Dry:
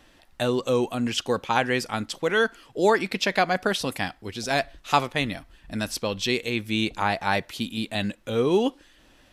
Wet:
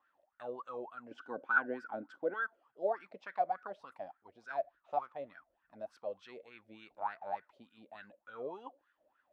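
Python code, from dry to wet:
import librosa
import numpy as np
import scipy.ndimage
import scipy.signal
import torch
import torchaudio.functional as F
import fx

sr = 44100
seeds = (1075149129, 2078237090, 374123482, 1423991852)

y = fx.low_shelf(x, sr, hz=390.0, db=6.5)
y = fx.small_body(y, sr, hz=(280.0, 1500.0), ring_ms=30, db=17, at=(1.11, 2.34))
y = fx.wah_lfo(y, sr, hz=3.4, low_hz=560.0, high_hz=1500.0, q=12.0)
y = y * librosa.db_to_amplitude(-3.5)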